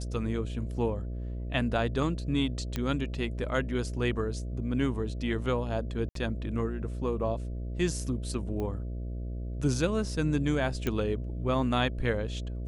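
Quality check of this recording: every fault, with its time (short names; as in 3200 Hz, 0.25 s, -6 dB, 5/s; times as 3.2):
buzz 60 Hz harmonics 11 -35 dBFS
2.76 pop -17 dBFS
6.09–6.15 gap 63 ms
8.6 pop -24 dBFS
10.87 pop -16 dBFS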